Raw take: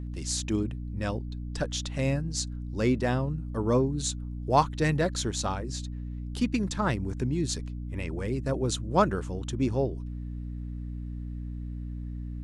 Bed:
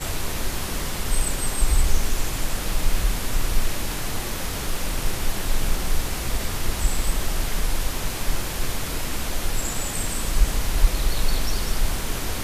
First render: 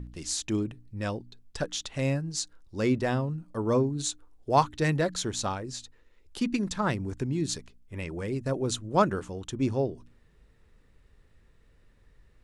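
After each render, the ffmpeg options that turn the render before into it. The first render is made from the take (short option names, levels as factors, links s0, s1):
-af "bandreject=f=60:t=h:w=4,bandreject=f=120:t=h:w=4,bandreject=f=180:t=h:w=4,bandreject=f=240:t=h:w=4,bandreject=f=300:t=h:w=4"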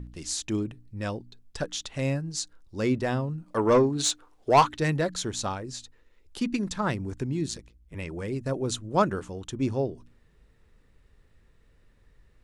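-filter_complex "[0:a]asplit=3[s0][s1][s2];[s0]afade=t=out:st=3.46:d=0.02[s3];[s1]asplit=2[s4][s5];[s5]highpass=f=720:p=1,volume=7.94,asoftclip=type=tanh:threshold=0.376[s6];[s4][s6]amix=inputs=2:normalize=0,lowpass=f=3900:p=1,volume=0.501,afade=t=in:st=3.46:d=0.02,afade=t=out:st=4.76:d=0.02[s7];[s2]afade=t=in:st=4.76:d=0.02[s8];[s3][s7][s8]amix=inputs=3:normalize=0,asettb=1/sr,asplit=3[s9][s10][s11];[s9]atrim=end=7.484[s12];[s10]atrim=start=7.48:end=7.95,asetpts=PTS-STARTPTS,afade=t=in:d=0.004:c=qsin,afade=t=out:st=0.466:d=0.004:c=qsin,aeval=exprs='val(0)*sin(2*PI*56*n/s)':c=same[s13];[s11]atrim=start=7.946[s14];[s12][s13]acrossfade=d=0.004:c1=hsin:c2=qsin[s15];[s15][s14]acrossfade=d=0.004:c1=qsin:c2=hsin"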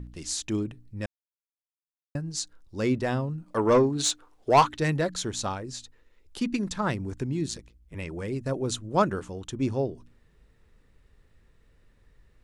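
-filter_complex "[0:a]asplit=3[s0][s1][s2];[s0]atrim=end=1.06,asetpts=PTS-STARTPTS,afade=t=out:st=1.056:d=0.004:c=hsin[s3];[s1]atrim=start=1.06:end=2.15,asetpts=PTS-STARTPTS,volume=0[s4];[s2]atrim=start=2.15,asetpts=PTS-STARTPTS,afade=t=in:d=0.004:c=hsin[s5];[s3][s4][s5]concat=n=3:v=0:a=1"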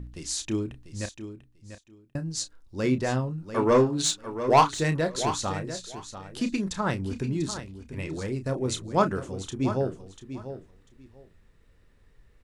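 -filter_complex "[0:a]asplit=2[s0][s1];[s1]adelay=31,volume=0.299[s2];[s0][s2]amix=inputs=2:normalize=0,aecho=1:1:693|1386:0.282|0.0507"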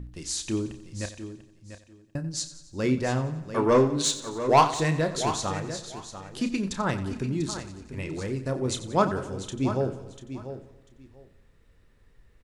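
-af "aecho=1:1:90|180|270|360|450|540:0.188|0.105|0.0591|0.0331|0.0185|0.0104"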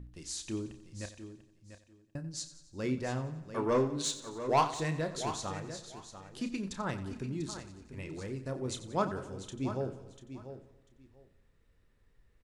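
-af "volume=0.376"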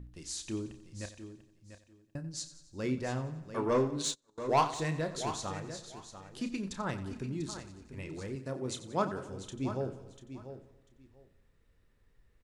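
-filter_complex "[0:a]asettb=1/sr,asplit=3[s0][s1][s2];[s0]atrim=end=3.694[s3];[s1]atrim=start=3.69:end=4.38,asetpts=PTS-STARTPTS,afade=t=in:d=0.004:c=qsin,afade=t=out:st=0.686:d=0.004:c=qsin,agate=range=0.0355:threshold=0.0112:ratio=16:release=100:detection=peak[s4];[s2]atrim=start=4.376[s5];[s3][s4]acrossfade=d=0.004:c1=hsin:c2=qsin[s6];[s6][s5]acrossfade=d=0.004:c1=qsin:c2=hsin,asettb=1/sr,asplit=3[s7][s8][s9];[s7]atrim=end=8.354[s10];[s8]atrim=start=8.35:end=9.29,asetpts=PTS-STARTPTS,afade=t=in:d=0.004:c=qsin,afade=t=out:st=0.936:d=0.004:c=qsin,highpass=110[s11];[s9]atrim=start=9.286[s12];[s10][s11]acrossfade=d=0.004:c1=hsin:c2=qsin[s13];[s13][s12]acrossfade=d=0.004:c1=qsin:c2=hsin"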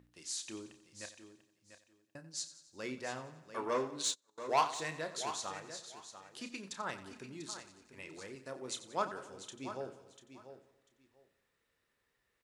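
-af "highpass=f=290:p=1,lowshelf=f=480:g=-9.5"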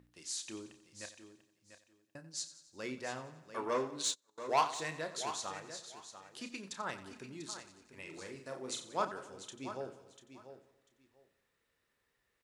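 -filter_complex "[0:a]asettb=1/sr,asplit=3[s0][s1][s2];[s0]atrim=end=8.024[s3];[s1]atrim=start=8.02:end=9.05,asetpts=PTS-STARTPTS,afade=t=in:d=0.004:c=qsin,afade=t=out:st=1.026:d=0.004:c=qsin,asplit=2[s4][s5];[s5]adelay=43,volume=0.501[s6];[s4][s6]amix=inputs=2:normalize=0,atrim=end_sample=45423[s7];[s2]atrim=start=9.046[s8];[s3][s7]acrossfade=d=0.004:c1=hsin:c2=qsin[s9];[s9][s8]acrossfade=d=0.004:c1=qsin:c2=hsin"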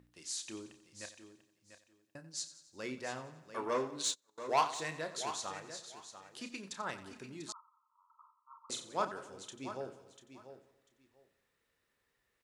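-filter_complex "[0:a]asettb=1/sr,asplit=3[s0][s1][s2];[s0]atrim=end=7.524[s3];[s1]atrim=start=7.52:end=8.7,asetpts=PTS-STARTPTS,afade=t=in:d=0.004:c=qsin,afade=t=out:st=1.176:d=0.004:c=qsin,asuperpass=centerf=1100:order=20:qfactor=2.4[s4];[s2]atrim=start=8.696[s5];[s3][s4]acrossfade=d=0.004:c1=hsin:c2=qsin[s6];[s6][s5]acrossfade=d=0.004:c1=qsin:c2=hsin"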